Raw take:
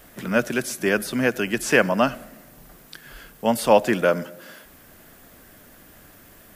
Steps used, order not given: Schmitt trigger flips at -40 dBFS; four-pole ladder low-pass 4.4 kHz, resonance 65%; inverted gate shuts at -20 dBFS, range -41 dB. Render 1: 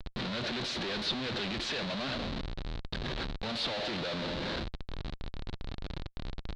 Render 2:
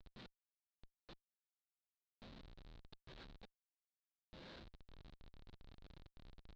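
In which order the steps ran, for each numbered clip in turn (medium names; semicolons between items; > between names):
Schmitt trigger > four-pole ladder low-pass > inverted gate; inverted gate > Schmitt trigger > four-pole ladder low-pass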